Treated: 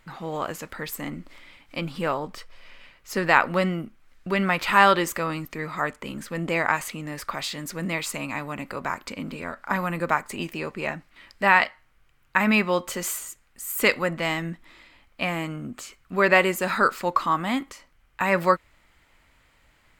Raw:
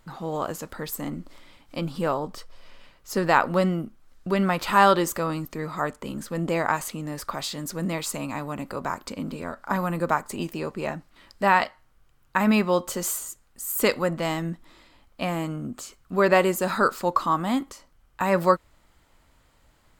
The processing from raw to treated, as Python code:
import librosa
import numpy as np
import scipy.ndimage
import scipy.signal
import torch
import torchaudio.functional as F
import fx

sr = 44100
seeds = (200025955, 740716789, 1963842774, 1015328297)

y = fx.peak_eq(x, sr, hz=2200.0, db=10.0, octaves=1.1)
y = F.gain(torch.from_numpy(y), -2.0).numpy()